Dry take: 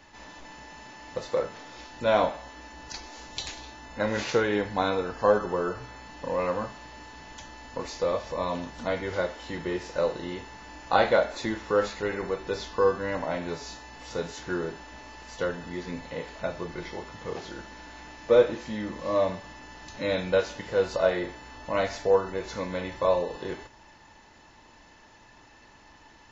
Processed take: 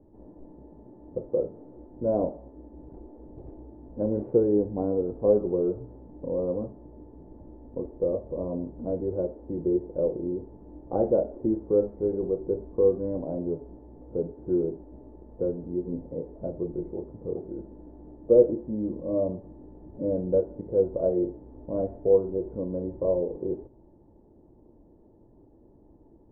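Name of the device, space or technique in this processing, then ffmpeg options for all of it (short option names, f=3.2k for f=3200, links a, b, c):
under water: -af "lowpass=f=530:w=0.5412,lowpass=f=530:w=1.3066,equalizer=f=350:t=o:w=0.53:g=5.5,volume=2dB"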